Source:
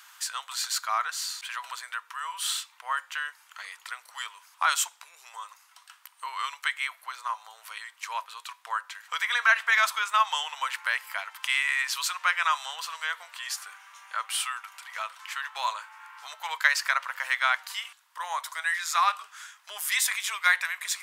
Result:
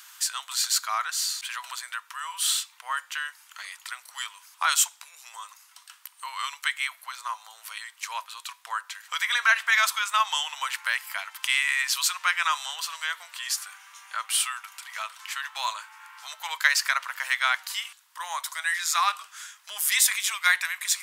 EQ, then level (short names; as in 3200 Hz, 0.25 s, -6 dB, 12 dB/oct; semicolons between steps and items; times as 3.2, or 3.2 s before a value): HPF 480 Hz 12 dB/oct; high shelf 2700 Hz +9 dB; -2.0 dB